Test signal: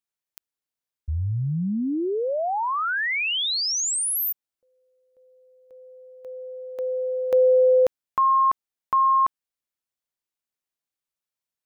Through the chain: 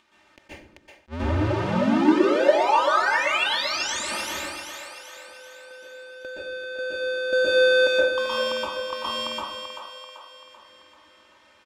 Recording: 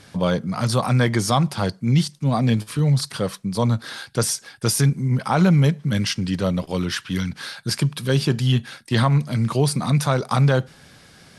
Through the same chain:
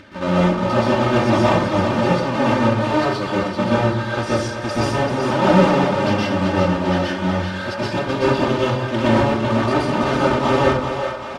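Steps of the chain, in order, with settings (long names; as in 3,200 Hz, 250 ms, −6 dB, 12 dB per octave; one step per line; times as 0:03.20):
each half-wave held at its own peak
high-pass filter 160 Hz 6 dB per octave
noise gate with hold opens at −35 dBFS, range −11 dB
low-pass filter 2,900 Hz 12 dB per octave
notch filter 680 Hz, Q 12
comb filter 3.3 ms, depth 88%
dynamic equaliser 2,000 Hz, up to −6 dB, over −37 dBFS, Q 1.7
upward compression, threshold −25 dBFS
echo with a time of its own for lows and highs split 440 Hz, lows 117 ms, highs 387 ms, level −7 dB
dense smooth reverb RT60 0.6 s, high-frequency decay 0.65×, pre-delay 110 ms, DRR −6.5 dB
level that may rise only so fast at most 470 dB per second
level −6.5 dB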